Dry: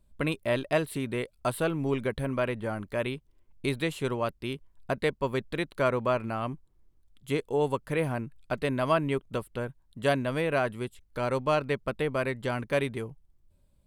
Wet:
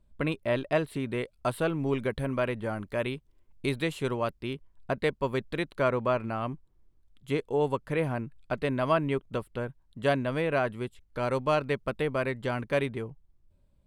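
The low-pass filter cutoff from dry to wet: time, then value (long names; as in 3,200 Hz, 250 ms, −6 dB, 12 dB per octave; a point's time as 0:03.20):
low-pass filter 6 dB per octave
3,300 Hz
from 0:01.07 5,400 Hz
from 0:01.91 9,800 Hz
from 0:04.42 4,000 Hz
from 0:05.04 7,700 Hz
from 0:05.75 4,300 Hz
from 0:11.21 10,000 Hz
from 0:12.11 5,500 Hz
from 0:12.86 3,000 Hz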